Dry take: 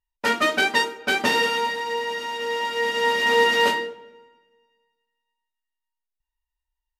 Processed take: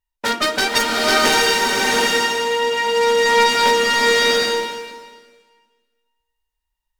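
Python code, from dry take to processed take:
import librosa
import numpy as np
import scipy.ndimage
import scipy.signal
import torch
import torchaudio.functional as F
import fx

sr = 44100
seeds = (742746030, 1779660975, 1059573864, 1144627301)

y = fx.self_delay(x, sr, depth_ms=0.2)
y = fx.rev_bloom(y, sr, seeds[0], attack_ms=760, drr_db=-3.0)
y = F.gain(torch.from_numpy(y), 2.5).numpy()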